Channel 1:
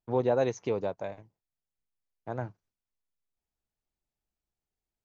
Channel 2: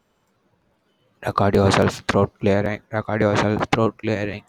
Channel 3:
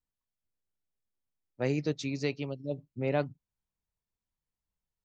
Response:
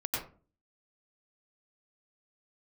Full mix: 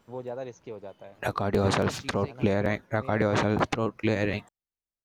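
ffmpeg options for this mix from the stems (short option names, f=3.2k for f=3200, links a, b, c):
-filter_complex "[0:a]volume=-10dB[a];[1:a]acompressor=threshold=-19dB:ratio=5,volume=1.5dB[b];[2:a]alimiter=limit=-22dB:level=0:latency=1,aeval=exprs='sgn(val(0))*max(abs(val(0))-0.00188,0)':c=same,volume=-7.5dB[c];[a][b][c]amix=inputs=3:normalize=0,alimiter=limit=-13dB:level=0:latency=1:release=328"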